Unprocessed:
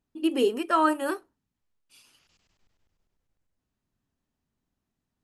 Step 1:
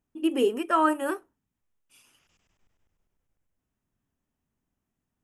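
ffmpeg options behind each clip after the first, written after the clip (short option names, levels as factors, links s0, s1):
-af "equalizer=f=4300:w=3.7:g=-13.5"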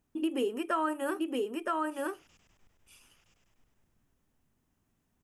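-af "aecho=1:1:968:0.562,acompressor=threshold=0.0141:ratio=3,volume=1.78"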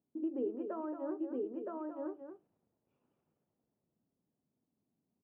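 -af "asuperpass=centerf=320:order=4:qfactor=0.59,aecho=1:1:226:0.398,volume=0.531"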